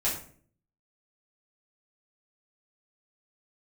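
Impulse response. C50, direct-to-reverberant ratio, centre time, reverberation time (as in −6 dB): 6.0 dB, −7.5 dB, 32 ms, 0.50 s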